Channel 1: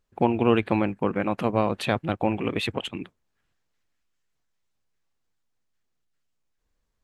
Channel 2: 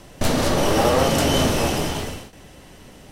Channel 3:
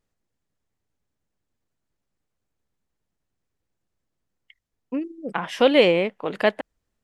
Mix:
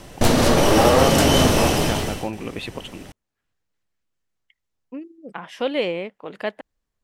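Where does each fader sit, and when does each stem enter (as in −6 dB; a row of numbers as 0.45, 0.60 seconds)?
−4.0, +3.0, −7.0 decibels; 0.00, 0.00, 0.00 seconds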